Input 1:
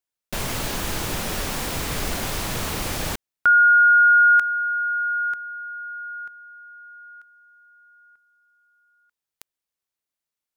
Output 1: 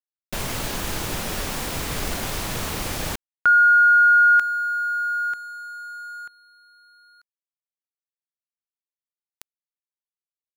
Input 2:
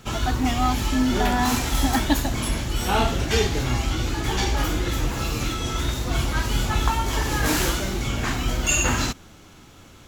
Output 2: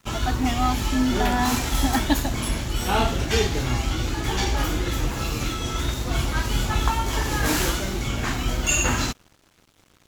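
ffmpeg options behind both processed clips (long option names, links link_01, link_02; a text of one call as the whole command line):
ffmpeg -i in.wav -af "aeval=exprs='sgn(val(0))*max(abs(val(0))-0.00562,0)':channel_layout=same" out.wav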